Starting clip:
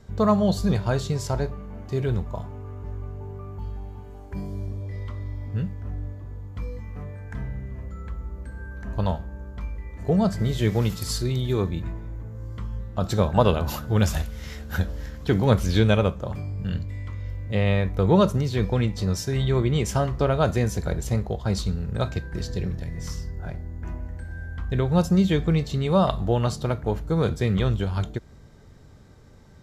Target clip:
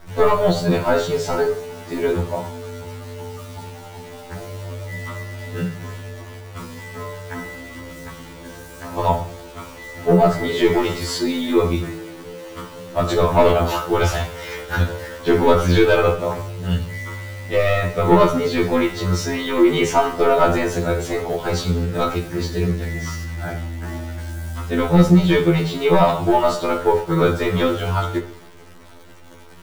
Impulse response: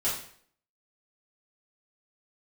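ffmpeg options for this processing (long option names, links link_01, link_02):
-filter_complex "[0:a]asplit=2[link_01][link_02];[link_02]highpass=frequency=720:poles=1,volume=18dB,asoftclip=type=tanh:threshold=-4.5dB[link_03];[link_01][link_03]amix=inputs=2:normalize=0,lowpass=frequency=1400:poles=1,volume=-6dB,acrusher=bits=8:dc=4:mix=0:aa=0.000001,acontrast=51,asplit=2[link_04][link_05];[1:a]atrim=start_sample=2205[link_06];[link_05][link_06]afir=irnorm=-1:irlink=0,volume=-10.5dB[link_07];[link_04][link_07]amix=inputs=2:normalize=0,afftfilt=real='re*2*eq(mod(b,4),0)':imag='im*2*eq(mod(b,4),0)':win_size=2048:overlap=0.75,volume=-2.5dB"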